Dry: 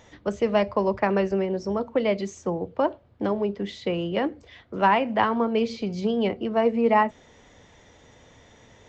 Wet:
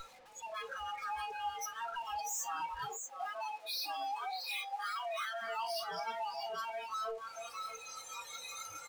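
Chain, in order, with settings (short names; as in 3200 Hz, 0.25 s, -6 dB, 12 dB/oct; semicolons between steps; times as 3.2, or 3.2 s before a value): compressor 6:1, threshold -35 dBFS, peak gain reduction 18.5 dB; sample leveller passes 5; frequency shift +450 Hz; comb 2.4 ms, depth 87%; tube stage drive 45 dB, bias 0.65; echo 0.634 s -4.5 dB; spectral noise reduction 22 dB; 2.88–5.41 HPF 170 Hz -> 650 Hz 24 dB/oct; gain +9 dB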